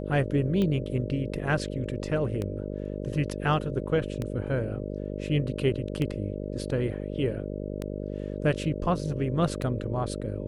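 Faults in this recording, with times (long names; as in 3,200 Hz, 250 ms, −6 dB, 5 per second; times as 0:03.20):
mains buzz 50 Hz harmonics 12 −34 dBFS
scratch tick 33 1/3 rpm −18 dBFS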